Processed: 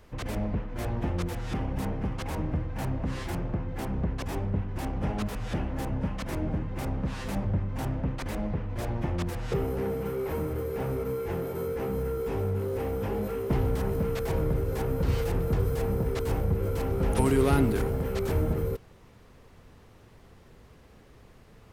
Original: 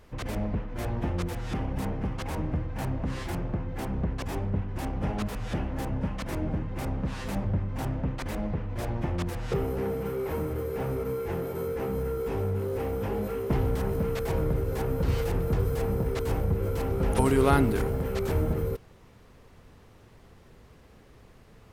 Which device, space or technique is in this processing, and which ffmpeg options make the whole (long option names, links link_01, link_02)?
one-band saturation: -filter_complex "[0:a]acrossover=split=450|3300[link_01][link_02][link_03];[link_02]asoftclip=type=tanh:threshold=-26.5dB[link_04];[link_01][link_04][link_03]amix=inputs=3:normalize=0"